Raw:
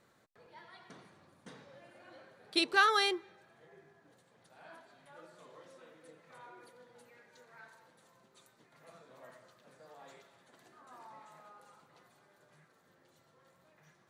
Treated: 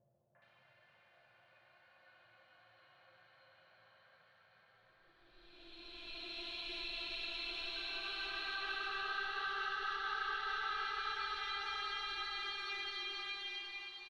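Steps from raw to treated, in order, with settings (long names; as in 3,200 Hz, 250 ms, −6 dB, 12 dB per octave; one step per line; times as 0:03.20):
guitar amp tone stack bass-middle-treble 10-0-10
harmonic generator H 4 −18 dB, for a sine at −17 dBFS
extreme stretch with random phases 10×, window 0.50 s, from 0:01.86
downward compressor, threshold −36 dBFS, peak gain reduction 7.5 dB
high-frequency loss of the air 300 metres
three-band delay without the direct sound lows, mids, highs 350/420 ms, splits 550/1,800 Hz
level +4.5 dB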